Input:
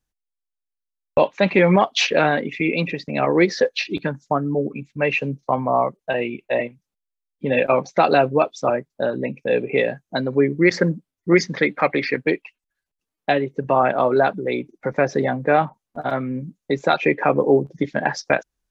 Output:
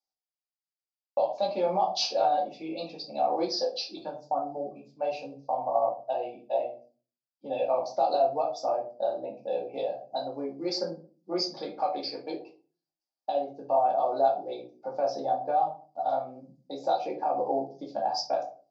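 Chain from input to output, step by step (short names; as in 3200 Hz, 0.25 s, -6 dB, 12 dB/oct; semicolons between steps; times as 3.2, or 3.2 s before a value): double band-pass 1900 Hz, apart 2.7 oct; limiter -20 dBFS, peak gain reduction 9.5 dB; shoebox room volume 220 m³, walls furnished, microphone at 2.4 m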